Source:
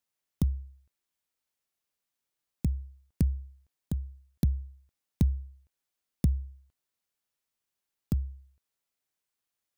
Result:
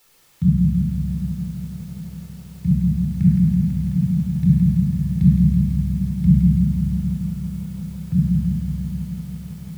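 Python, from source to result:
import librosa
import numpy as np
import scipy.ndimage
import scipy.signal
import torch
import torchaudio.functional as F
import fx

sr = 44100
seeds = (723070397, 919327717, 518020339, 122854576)

y = scipy.signal.sosfilt(scipy.signal.butter(2, 87.0, 'highpass', fs=sr, output='sos'), x)
y = fx.env_lowpass(y, sr, base_hz=940.0, full_db=-27.0)
y = fx.curve_eq(y, sr, hz=(120.0, 180.0, 390.0, 2100.0), db=(0, 14, -28, 7))
y = fx.quant_dither(y, sr, seeds[0], bits=10, dither='triangular')
y = fx.echo_feedback(y, sr, ms=758, feedback_pct=48, wet_db=-15)
y = fx.room_shoebox(y, sr, seeds[1], volume_m3=2800.0, walls='mixed', distance_m=4.2)
y = fx.echo_crushed(y, sr, ms=165, feedback_pct=80, bits=9, wet_db=-6)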